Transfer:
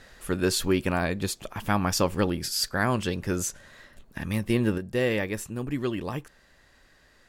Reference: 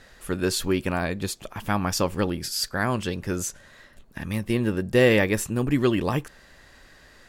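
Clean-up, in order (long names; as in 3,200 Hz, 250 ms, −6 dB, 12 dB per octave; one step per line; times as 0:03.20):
level 0 dB, from 0:04.78 +7.5 dB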